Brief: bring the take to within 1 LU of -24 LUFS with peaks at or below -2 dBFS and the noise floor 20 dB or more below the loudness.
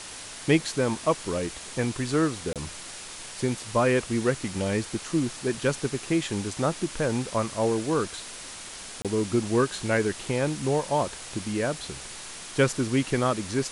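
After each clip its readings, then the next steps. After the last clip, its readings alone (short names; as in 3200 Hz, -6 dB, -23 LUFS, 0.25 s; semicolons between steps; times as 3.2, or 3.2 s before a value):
dropouts 2; longest dropout 27 ms; noise floor -41 dBFS; noise floor target -48 dBFS; loudness -27.5 LUFS; peak -8.0 dBFS; loudness target -24.0 LUFS
-> interpolate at 2.53/9.02, 27 ms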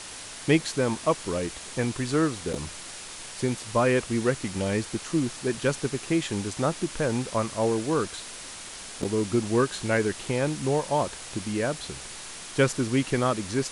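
dropouts 0; noise floor -41 dBFS; noise floor target -48 dBFS
-> denoiser 7 dB, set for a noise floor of -41 dBFS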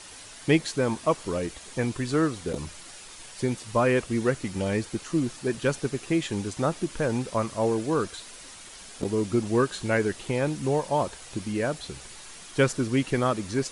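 noise floor -45 dBFS; noise floor target -48 dBFS
-> denoiser 6 dB, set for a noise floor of -45 dBFS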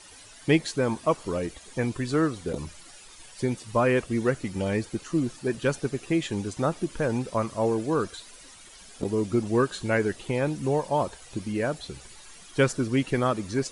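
noise floor -49 dBFS; loudness -27.5 LUFS; peak -8.5 dBFS; loudness target -24.0 LUFS
-> gain +3.5 dB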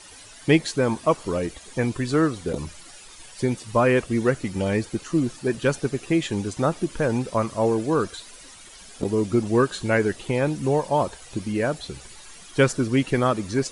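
loudness -24.0 LUFS; peak -5.0 dBFS; noise floor -45 dBFS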